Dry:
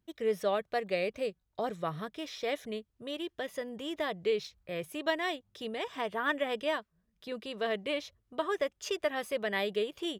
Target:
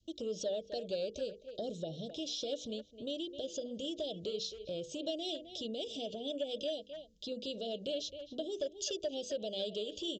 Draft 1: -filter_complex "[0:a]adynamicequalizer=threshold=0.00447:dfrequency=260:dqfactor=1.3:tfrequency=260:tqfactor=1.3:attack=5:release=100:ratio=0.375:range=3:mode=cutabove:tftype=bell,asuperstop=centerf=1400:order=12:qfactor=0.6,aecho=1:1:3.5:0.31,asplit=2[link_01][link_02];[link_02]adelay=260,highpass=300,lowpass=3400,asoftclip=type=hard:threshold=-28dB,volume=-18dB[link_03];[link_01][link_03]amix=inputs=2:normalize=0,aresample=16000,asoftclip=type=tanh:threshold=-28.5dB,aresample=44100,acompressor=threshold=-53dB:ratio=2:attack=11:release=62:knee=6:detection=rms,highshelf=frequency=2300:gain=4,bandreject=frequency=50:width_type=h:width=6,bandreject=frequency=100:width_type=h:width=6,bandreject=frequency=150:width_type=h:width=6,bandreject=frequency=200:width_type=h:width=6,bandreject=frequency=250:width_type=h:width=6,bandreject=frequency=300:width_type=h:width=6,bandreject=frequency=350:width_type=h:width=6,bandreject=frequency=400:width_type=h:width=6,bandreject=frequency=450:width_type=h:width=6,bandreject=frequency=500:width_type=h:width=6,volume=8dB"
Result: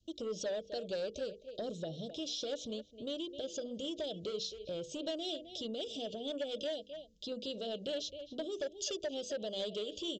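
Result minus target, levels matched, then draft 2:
soft clipping: distortion +15 dB
-filter_complex "[0:a]adynamicequalizer=threshold=0.00447:dfrequency=260:dqfactor=1.3:tfrequency=260:tqfactor=1.3:attack=5:release=100:ratio=0.375:range=3:mode=cutabove:tftype=bell,asuperstop=centerf=1400:order=12:qfactor=0.6,aecho=1:1:3.5:0.31,asplit=2[link_01][link_02];[link_02]adelay=260,highpass=300,lowpass=3400,asoftclip=type=hard:threshold=-28dB,volume=-18dB[link_03];[link_01][link_03]amix=inputs=2:normalize=0,aresample=16000,asoftclip=type=tanh:threshold=-18.5dB,aresample=44100,acompressor=threshold=-53dB:ratio=2:attack=11:release=62:knee=6:detection=rms,highshelf=frequency=2300:gain=4,bandreject=frequency=50:width_type=h:width=6,bandreject=frequency=100:width_type=h:width=6,bandreject=frequency=150:width_type=h:width=6,bandreject=frequency=200:width_type=h:width=6,bandreject=frequency=250:width_type=h:width=6,bandreject=frequency=300:width_type=h:width=6,bandreject=frequency=350:width_type=h:width=6,bandreject=frequency=400:width_type=h:width=6,bandreject=frequency=450:width_type=h:width=6,bandreject=frequency=500:width_type=h:width=6,volume=8dB"

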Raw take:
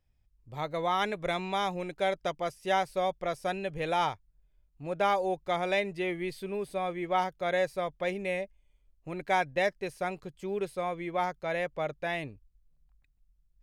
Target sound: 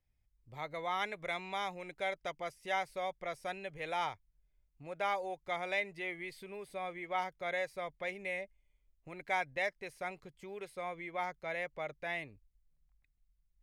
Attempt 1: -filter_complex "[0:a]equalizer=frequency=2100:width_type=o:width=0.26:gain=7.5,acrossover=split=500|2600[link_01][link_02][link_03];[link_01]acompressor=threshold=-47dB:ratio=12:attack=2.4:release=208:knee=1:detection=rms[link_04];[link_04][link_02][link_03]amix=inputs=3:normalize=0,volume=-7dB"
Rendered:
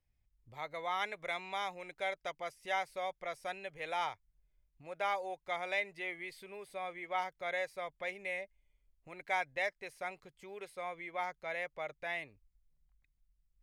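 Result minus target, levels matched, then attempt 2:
downward compressor: peak gain reduction +7 dB
-filter_complex "[0:a]equalizer=frequency=2100:width_type=o:width=0.26:gain=7.5,acrossover=split=500|2600[link_01][link_02][link_03];[link_01]acompressor=threshold=-39.5dB:ratio=12:attack=2.4:release=208:knee=1:detection=rms[link_04];[link_04][link_02][link_03]amix=inputs=3:normalize=0,volume=-7dB"

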